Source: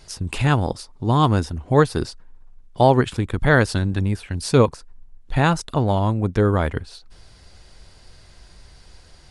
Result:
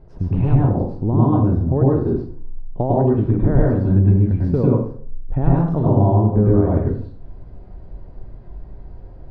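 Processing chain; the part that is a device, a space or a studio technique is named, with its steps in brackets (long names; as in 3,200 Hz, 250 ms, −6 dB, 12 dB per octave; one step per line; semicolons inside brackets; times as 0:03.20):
0:05.62–0:06.41: flutter between parallel walls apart 6.6 metres, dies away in 0.48 s
television next door (downward compressor 6 to 1, threshold −21 dBFS, peak gain reduction 11.5 dB; low-pass filter 550 Hz 12 dB per octave; convolution reverb RT60 0.50 s, pre-delay 93 ms, DRR −5 dB)
level +5 dB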